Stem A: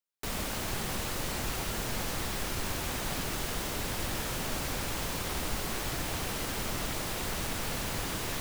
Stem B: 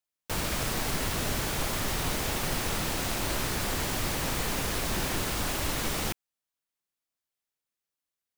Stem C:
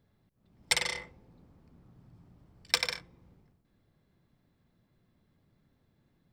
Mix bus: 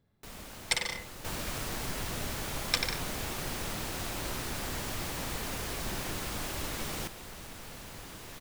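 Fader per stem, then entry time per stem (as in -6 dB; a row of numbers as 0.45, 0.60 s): -11.5, -6.5, -2.0 dB; 0.00, 0.95, 0.00 s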